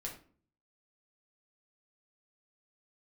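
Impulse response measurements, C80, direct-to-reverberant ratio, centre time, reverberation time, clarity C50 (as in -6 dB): 13.0 dB, -2.0 dB, 21 ms, 0.45 s, 8.0 dB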